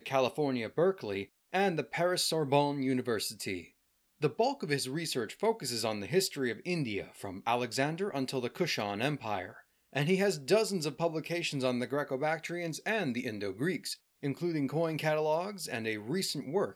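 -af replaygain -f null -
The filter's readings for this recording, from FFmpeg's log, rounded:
track_gain = +12.5 dB
track_peak = 0.161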